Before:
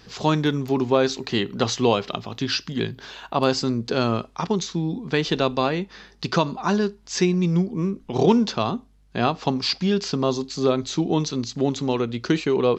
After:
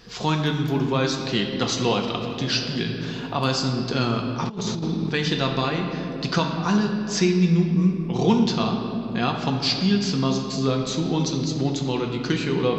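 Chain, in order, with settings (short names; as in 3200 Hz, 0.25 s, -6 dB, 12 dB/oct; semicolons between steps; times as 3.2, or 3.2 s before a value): reverb RT60 2.6 s, pre-delay 4 ms, DRR 1.5 dB; 4.47–5.1 negative-ratio compressor -24 dBFS, ratio -0.5; dynamic EQ 560 Hz, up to -7 dB, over -31 dBFS, Q 0.75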